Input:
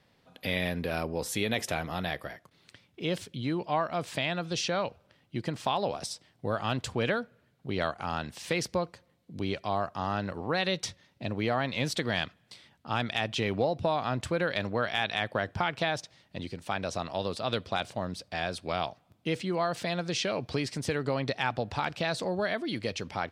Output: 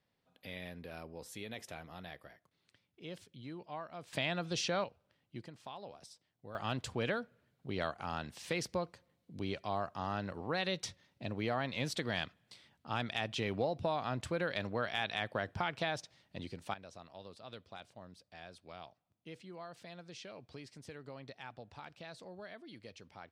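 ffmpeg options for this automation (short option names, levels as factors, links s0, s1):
-af "asetnsamples=n=441:p=0,asendcmd='4.13 volume volume -4.5dB;4.84 volume volume -12dB;5.46 volume volume -18.5dB;6.55 volume volume -6.5dB;16.74 volume volume -19dB',volume=0.168"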